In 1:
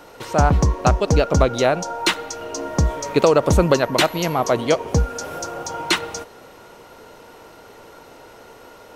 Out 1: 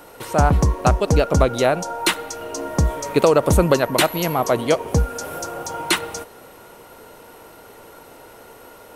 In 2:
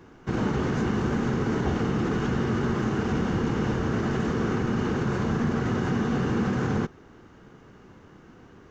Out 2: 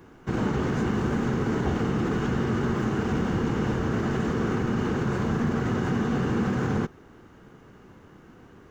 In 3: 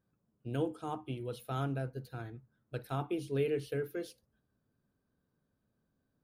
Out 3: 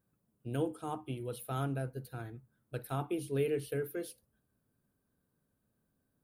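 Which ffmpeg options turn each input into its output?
-af "highshelf=f=7700:t=q:w=1.5:g=7"

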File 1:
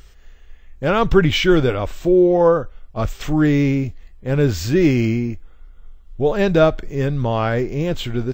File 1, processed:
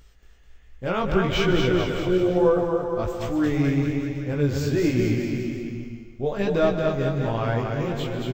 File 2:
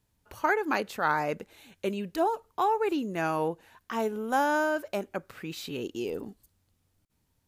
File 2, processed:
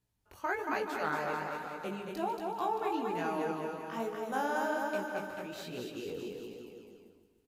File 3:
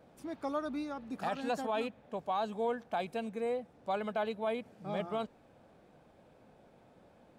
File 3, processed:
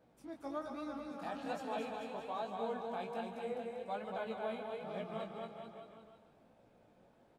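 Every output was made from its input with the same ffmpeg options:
-filter_complex "[0:a]asplit=2[s0][s1];[s1]aecho=0:1:230|437|623.3|791|941.9:0.631|0.398|0.251|0.158|0.1[s2];[s0][s2]amix=inputs=2:normalize=0,flanger=delay=16:depth=5.9:speed=1.2,asplit=2[s3][s4];[s4]aecho=0:1:148|296|444|592|740|888:0.224|0.13|0.0753|0.0437|0.0253|0.0147[s5];[s3][s5]amix=inputs=2:normalize=0,volume=0.562"

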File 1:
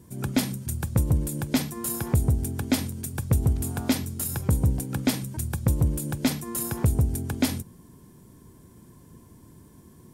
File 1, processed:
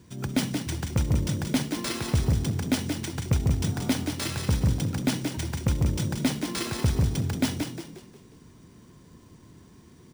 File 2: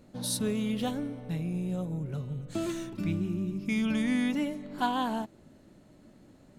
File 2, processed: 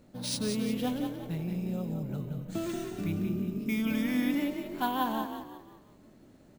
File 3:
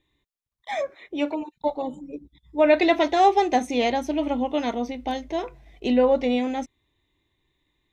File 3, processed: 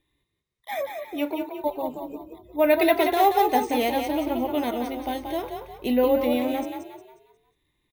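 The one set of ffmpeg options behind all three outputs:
-filter_complex "[0:a]asplit=6[s0][s1][s2][s3][s4][s5];[s1]adelay=179,afreqshift=37,volume=0.501[s6];[s2]adelay=358,afreqshift=74,volume=0.195[s7];[s3]adelay=537,afreqshift=111,volume=0.0759[s8];[s4]adelay=716,afreqshift=148,volume=0.0299[s9];[s5]adelay=895,afreqshift=185,volume=0.0116[s10];[s0][s6][s7][s8][s9][s10]amix=inputs=6:normalize=0,acrusher=samples=3:mix=1:aa=0.000001,volume=0.794"

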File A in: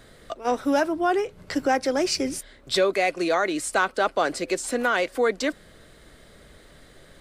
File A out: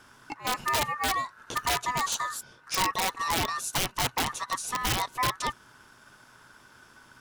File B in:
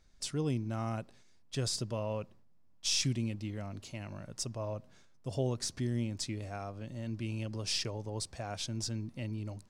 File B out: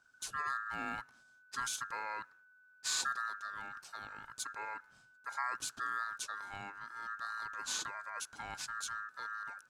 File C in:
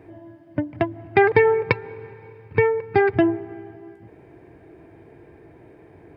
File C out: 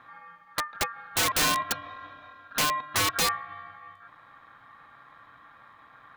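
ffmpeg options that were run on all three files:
-af "aeval=exprs='val(0)*sin(2*PI*1500*n/s)':c=same,equalizer=f=125:t=o:w=0.33:g=8,equalizer=f=250:t=o:w=0.33:g=6,equalizer=f=2000:t=o:w=0.33:g=-11,equalizer=f=3150:t=o:w=0.33:g=-5,aeval=exprs='(mod(8.41*val(0)+1,2)-1)/8.41':c=same"

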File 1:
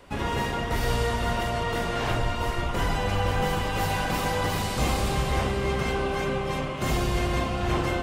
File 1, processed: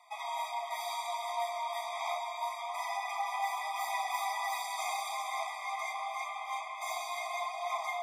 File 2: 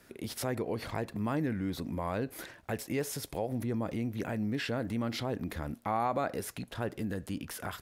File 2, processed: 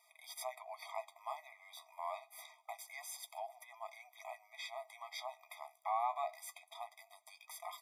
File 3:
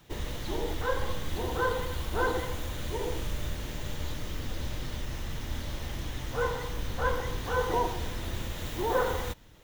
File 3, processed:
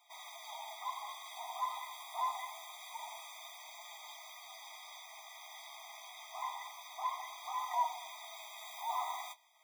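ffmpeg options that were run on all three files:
-af "flanger=delay=5.5:depth=9.9:regen=43:speed=0.26:shape=triangular,afftfilt=real='re*eq(mod(floor(b*sr/1024/640),2),1)':imag='im*eq(mod(floor(b*sr/1024/640),2),1)':win_size=1024:overlap=0.75"

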